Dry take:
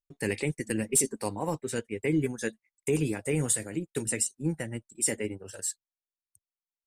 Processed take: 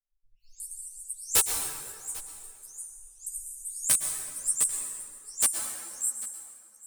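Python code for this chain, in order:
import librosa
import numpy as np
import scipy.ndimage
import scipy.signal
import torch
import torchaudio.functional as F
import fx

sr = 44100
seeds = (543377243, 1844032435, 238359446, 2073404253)

y = fx.spec_delay(x, sr, highs='late', ms=394)
y = scipy.signal.sosfilt(scipy.signal.cheby2(4, 70, [150.0, 1900.0], 'bandstop', fs=sr, output='sos'), y)
y = fx.high_shelf(y, sr, hz=12000.0, db=4.5)
y = fx.hpss(y, sr, part='harmonic', gain_db=6)
y = fx.high_shelf(y, sr, hz=3500.0, db=10.5)
y = (np.mod(10.0 ** (8.0 / 20.0) * y + 1.0, 2.0) - 1.0) / 10.0 ** (8.0 / 20.0)
y = y + 10.0 ** (-19.5 / 20.0) * np.pad(y, (int(795 * sr / 1000.0), 0))[:len(y)]
y = fx.rev_plate(y, sr, seeds[0], rt60_s=2.2, hf_ratio=0.6, predelay_ms=100, drr_db=4.0)
y = fx.ensemble(y, sr)
y = F.gain(torch.from_numpy(y), -2.0).numpy()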